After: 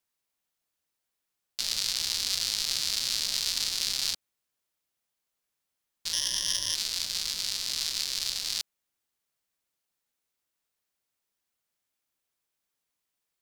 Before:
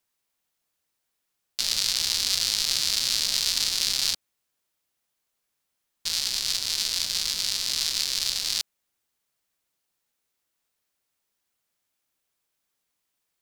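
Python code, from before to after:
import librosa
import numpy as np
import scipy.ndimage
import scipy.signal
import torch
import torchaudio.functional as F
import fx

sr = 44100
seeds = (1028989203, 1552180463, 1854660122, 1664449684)

y = fx.ripple_eq(x, sr, per_octave=1.2, db=17, at=(6.13, 6.75))
y = F.gain(torch.from_numpy(y), -4.5).numpy()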